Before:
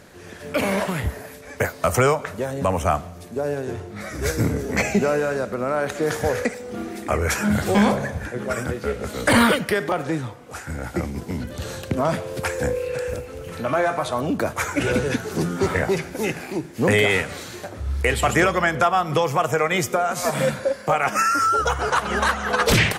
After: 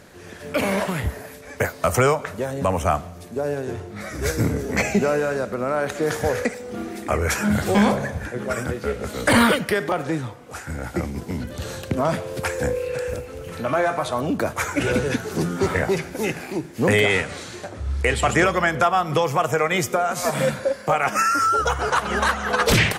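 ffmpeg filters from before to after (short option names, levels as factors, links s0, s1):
-filter_complex "[0:a]asettb=1/sr,asplit=3[s0][s1][s2];[s0]atrim=end=17.004[s3];[s1]atrim=start=17:end=18.45,asetpts=PTS-STARTPTS,afade=t=in:d=0.004:c=qsin,afade=t=out:st=1.446:d=0.004:c=qsin,lowpass=f=10000:w=0.5412,lowpass=f=10000:w=1.3066[s4];[s2]atrim=start=18.446[s5];[s3][s4]acrossfade=d=0.004:c1=hsin:c2=qsin[s6];[s6][s5]acrossfade=d=0.004:c1=qsin:c2=hsin"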